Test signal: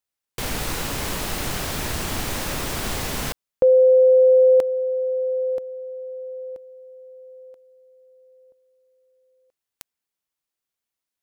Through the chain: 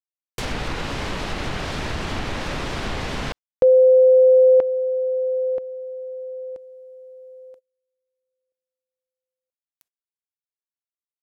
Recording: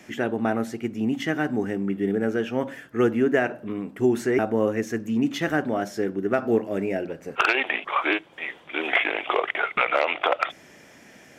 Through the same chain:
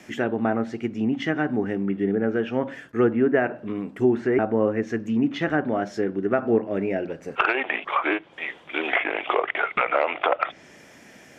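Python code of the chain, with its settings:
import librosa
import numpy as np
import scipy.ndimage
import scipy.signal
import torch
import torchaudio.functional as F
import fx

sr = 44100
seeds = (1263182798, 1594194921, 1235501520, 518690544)

y = fx.env_lowpass_down(x, sr, base_hz=2000.0, full_db=-19.5)
y = fx.gate_hold(y, sr, open_db=-48.0, close_db=-50.0, hold_ms=23.0, range_db=-29, attack_ms=0.14, release_ms=26.0)
y = F.gain(torch.from_numpy(y), 1.0).numpy()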